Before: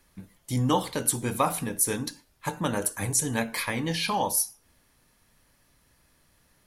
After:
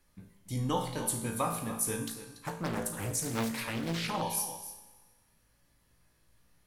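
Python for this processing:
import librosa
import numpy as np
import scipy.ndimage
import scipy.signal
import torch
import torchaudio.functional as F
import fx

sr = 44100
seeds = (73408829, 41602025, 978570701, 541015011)

y = fx.low_shelf(x, sr, hz=140.0, db=5.0)
y = fx.comb_fb(y, sr, f0_hz=56.0, decay_s=0.51, harmonics='all', damping=0.0, mix_pct=80)
y = y + 10.0 ** (-12.5 / 20.0) * np.pad(y, (int(286 * sr / 1000.0), 0))[:len(y)]
y = fx.rev_schroeder(y, sr, rt60_s=1.4, comb_ms=31, drr_db=10.5)
y = fx.doppler_dist(y, sr, depth_ms=0.75, at=(2.07, 4.22))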